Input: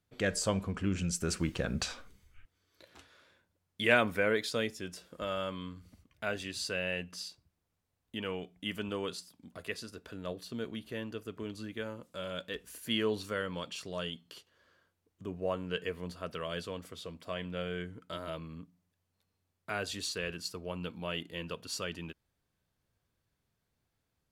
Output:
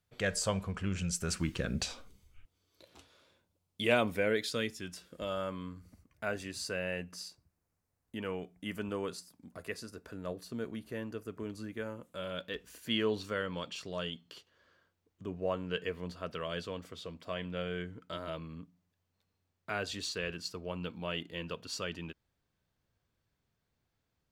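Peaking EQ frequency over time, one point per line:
peaking EQ -9 dB 0.72 oct
1.23 s 290 Hz
1.94 s 1.7 kHz
4.01 s 1.7 kHz
4.95 s 430 Hz
5.44 s 3.3 kHz
11.80 s 3.3 kHz
12.66 s 11 kHz

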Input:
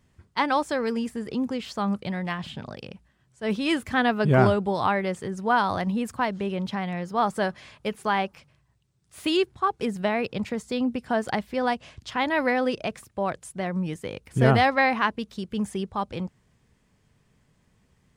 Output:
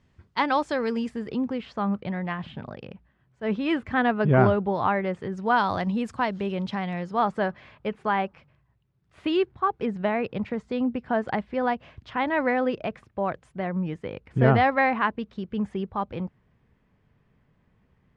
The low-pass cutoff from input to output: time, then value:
1.07 s 4.9 kHz
1.64 s 2.3 kHz
5.14 s 2.3 kHz
5.54 s 5.3 kHz
6.95 s 5.3 kHz
7.46 s 2.3 kHz

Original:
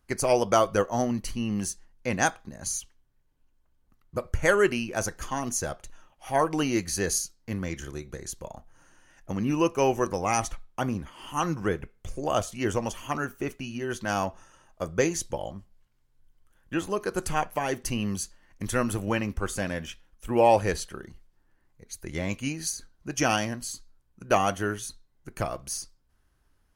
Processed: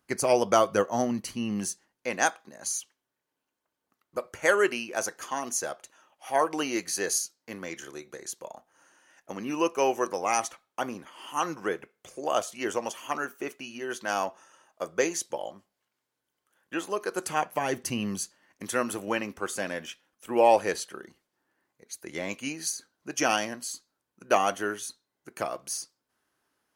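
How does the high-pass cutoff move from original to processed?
1.57 s 160 Hz
2.11 s 360 Hz
17.13 s 360 Hz
17.74 s 120 Hz
18.69 s 290 Hz

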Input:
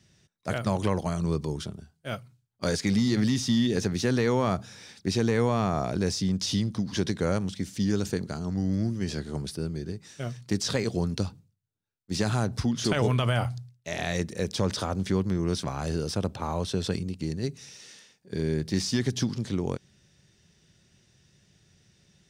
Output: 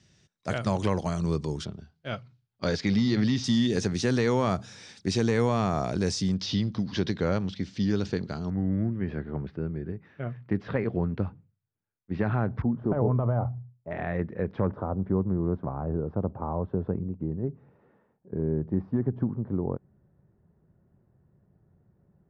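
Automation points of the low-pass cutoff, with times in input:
low-pass 24 dB/octave
8.1 kHz
from 1.65 s 5 kHz
from 3.44 s 8.7 kHz
from 6.34 s 4.8 kHz
from 8.50 s 2.1 kHz
from 12.62 s 1 kHz
from 13.91 s 1.8 kHz
from 14.67 s 1.1 kHz

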